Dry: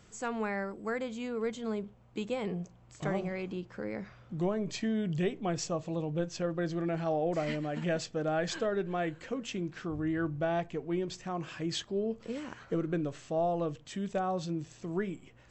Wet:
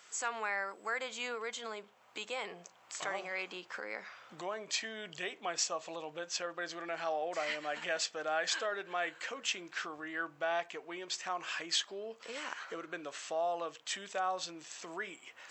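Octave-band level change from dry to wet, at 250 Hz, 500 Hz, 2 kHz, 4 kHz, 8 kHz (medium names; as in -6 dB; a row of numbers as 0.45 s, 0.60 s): -16.5 dB, -6.5 dB, +4.5 dB, +5.5 dB, +6.0 dB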